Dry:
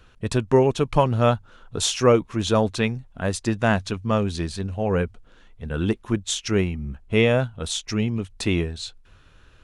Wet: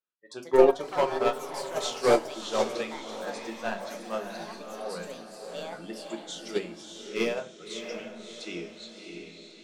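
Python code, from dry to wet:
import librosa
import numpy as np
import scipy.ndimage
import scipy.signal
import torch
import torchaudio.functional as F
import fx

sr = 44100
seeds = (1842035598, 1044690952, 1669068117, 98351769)

p1 = scipy.signal.sosfilt(scipy.signal.cheby1(2, 1.0, 340.0, 'highpass', fs=sr, output='sos'), x)
p2 = fx.noise_reduce_blind(p1, sr, reduce_db=28)
p3 = scipy.signal.sosfilt(scipy.signal.butter(2, 5200.0, 'lowpass', fs=sr, output='sos'), p2)
p4 = fx.high_shelf(p3, sr, hz=3900.0, db=6.5)
p5 = np.clip(p4, -10.0 ** (-13.0 / 20.0), 10.0 ** (-13.0 / 20.0))
p6 = p5 + fx.echo_diffused(p5, sr, ms=631, feedback_pct=44, wet_db=-4.0, dry=0)
p7 = fx.echo_pitch(p6, sr, ms=190, semitones=5, count=3, db_per_echo=-6.0)
p8 = fx.room_shoebox(p7, sr, seeds[0], volume_m3=220.0, walls='furnished', distance_m=0.97)
y = fx.upward_expand(p8, sr, threshold_db=-21.0, expansion=2.5)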